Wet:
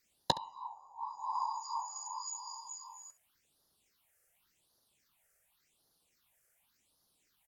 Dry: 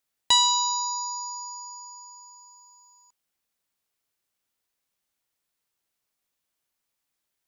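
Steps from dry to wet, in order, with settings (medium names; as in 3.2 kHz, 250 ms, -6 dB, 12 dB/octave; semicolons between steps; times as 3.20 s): whisper effect; in parallel at -1 dB: compression 6:1, threshold -33 dBFS, peak gain reduction 16.5 dB; on the sum: low-pass that closes with the level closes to 300 Hz, closed at -23 dBFS; phase shifter stages 6, 0.89 Hz, lowest notch 250–2400 Hz; on a send: early reflections 14 ms -14 dB, 68 ms -18 dB; on the sum: trim +4.5 dB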